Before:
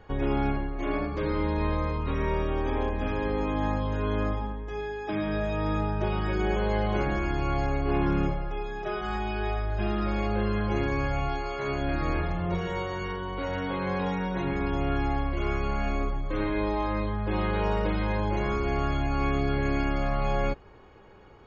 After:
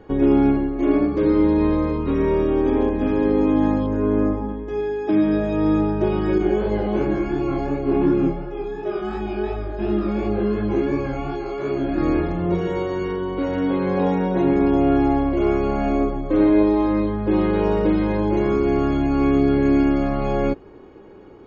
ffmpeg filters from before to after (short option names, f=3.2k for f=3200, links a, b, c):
-filter_complex "[0:a]asettb=1/sr,asplit=3[a][b][c];[a]atrim=end=3.864[d];[b]atrim=start=3.86:end=4.49,asetpts=PTS-STARTPTS,afade=t=in:d=0.004:c=qsin,afade=t=out:st=0.626:d=0.004:c=qsin,equalizer=f=3.6k:t=o:w=0.96:g=-13[e];[c]atrim=start=4.486[f];[d][e]acrossfade=d=0.004:c1=hsin:c2=qsin[g];[g][f]acrossfade=d=0.004:c1=qsin:c2=hsin,asettb=1/sr,asplit=3[h][i][j];[h]atrim=end=6.384[k];[i]atrim=start=6.38:end=11.98,asetpts=PTS-STARTPTS,afade=t=in:d=0.004:c=qsin,afade=t=out:st=5.596:d=0.004:c=qsin,flanger=delay=19.5:depth=4.8:speed=2.8[l];[j]atrim=start=11.976[m];[k][l]acrossfade=d=0.004:c1=hsin:c2=qsin[n];[n][m]acrossfade=d=0.004:c1=qsin:c2=hsin,asettb=1/sr,asplit=3[o][p][q];[o]atrim=end=13.974[r];[p]atrim=start=13.97:end=16.63,asetpts=PTS-STARTPTS,afade=t=in:d=0.004:c=qsin,afade=t=out:st=2.656:d=0.004:c=qsin,equalizer=f=670:t=o:w=0.77:g=6.5[s];[q]atrim=start=16.626[t];[r][s]acrossfade=d=0.004:c1=hsin:c2=qsin[u];[u][t]acrossfade=d=0.004:c1=qsin:c2=hsin,equalizer=f=310:w=0.93:g=15"